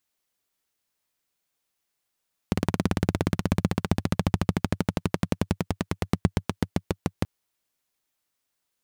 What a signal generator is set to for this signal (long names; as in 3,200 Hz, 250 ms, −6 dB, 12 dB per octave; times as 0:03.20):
pulse-train model of a single-cylinder engine, changing speed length 4.73 s, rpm 2,200, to 700, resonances 98/170 Hz